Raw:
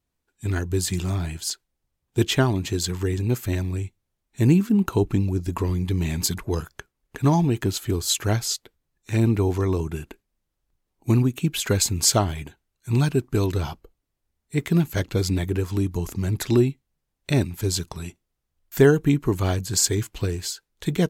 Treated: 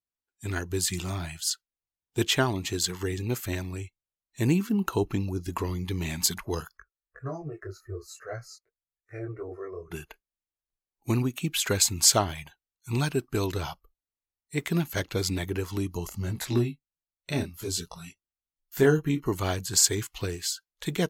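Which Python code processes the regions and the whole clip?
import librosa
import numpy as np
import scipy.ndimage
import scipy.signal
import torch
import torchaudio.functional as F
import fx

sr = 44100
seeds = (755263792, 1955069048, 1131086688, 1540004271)

y = fx.chain(x, sr, fx.lowpass(hz=1200.0, slope=6),
    fx.fixed_phaser(hz=890.0, stages=6),
    fx.detune_double(cents=16), at=(6.77, 9.91))
y = fx.chain(y, sr, fx.low_shelf(hz=320.0, db=4.5),
    fx.detune_double(cents=16), at=(16.09, 19.26))
y = fx.noise_reduce_blind(y, sr, reduce_db=16)
y = fx.low_shelf(y, sr, hz=410.0, db=-8.5)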